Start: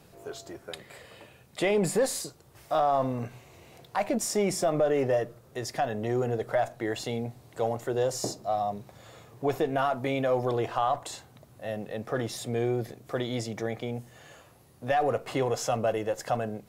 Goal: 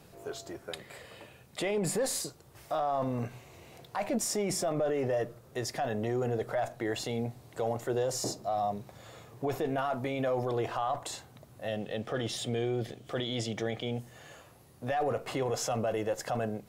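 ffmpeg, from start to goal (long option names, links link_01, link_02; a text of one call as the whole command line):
ffmpeg -i in.wav -filter_complex "[0:a]asettb=1/sr,asplit=3[link_01][link_02][link_03];[link_01]atrim=end=11.684[link_04];[link_02]atrim=start=11.68:end=14,asetpts=PTS-STARTPTS,afade=type=in:duration=0.004:curve=qsin,afade=type=out:start_time=2.316:duration=0.004:curve=qsin,equalizer=frequency=1000:width_type=o:width=0.33:gain=-4,equalizer=frequency=3150:width_type=o:width=0.33:gain=12,equalizer=frequency=12500:width_type=o:width=0.33:gain=-11[link_05];[link_03]atrim=start=13.996[link_06];[link_04][link_05]acrossfade=duration=0.004:curve1=hsin:curve2=qsin[link_07];[link_07][link_06]acrossfade=duration=0.004:curve1=qsin:curve2=hsin,alimiter=limit=-23dB:level=0:latency=1:release=14" out.wav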